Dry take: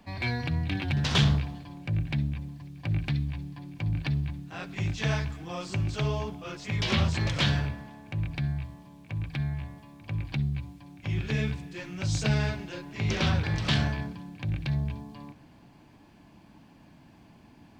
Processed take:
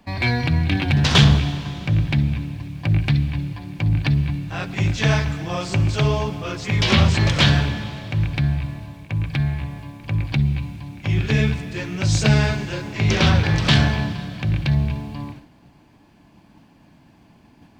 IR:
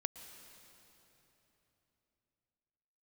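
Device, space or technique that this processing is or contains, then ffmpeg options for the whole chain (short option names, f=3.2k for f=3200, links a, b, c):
keyed gated reverb: -filter_complex "[0:a]asplit=3[a][b][c];[1:a]atrim=start_sample=2205[d];[b][d]afir=irnorm=-1:irlink=0[e];[c]apad=whole_len=784891[f];[e][f]sidechaingate=range=-33dB:threshold=-50dB:ratio=16:detection=peak,volume=4.5dB[g];[a][g]amix=inputs=2:normalize=0,volume=2dB"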